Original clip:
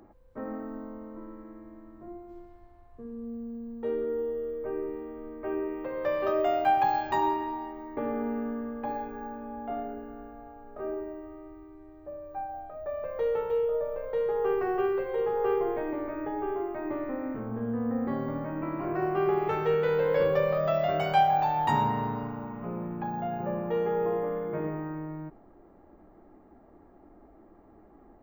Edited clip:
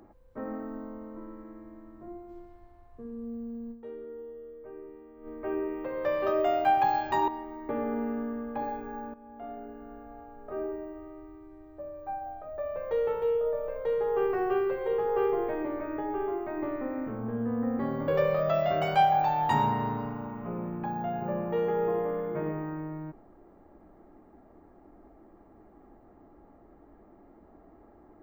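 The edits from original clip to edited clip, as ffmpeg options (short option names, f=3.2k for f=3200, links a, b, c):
-filter_complex "[0:a]asplit=6[a][b][c][d][e][f];[a]atrim=end=4.12,asetpts=PTS-STARTPTS,afade=t=out:st=3.71:d=0.41:c=exp:silence=0.266073[g];[b]atrim=start=4.12:end=4.87,asetpts=PTS-STARTPTS,volume=-11.5dB[h];[c]atrim=start=4.87:end=7.282,asetpts=PTS-STARTPTS,afade=t=in:d=0.41:c=exp:silence=0.266073[i];[d]atrim=start=7.558:end=9.42,asetpts=PTS-STARTPTS,afade=t=out:st=1.858:d=0.004:c=hsin:silence=0.199526[j];[e]atrim=start=9.42:end=18.362,asetpts=PTS-STARTPTS,afade=t=in:d=1.04:silence=0.199526[k];[f]atrim=start=20.258[l];[g][h][i]concat=n=3:v=0:a=1[m];[j][k]concat=n=2:v=0:a=1[n];[m][n]acrossfade=d=0.004:c1=hsin:c2=hsin[o];[o][l]acrossfade=d=0.004:c1=hsin:c2=hsin"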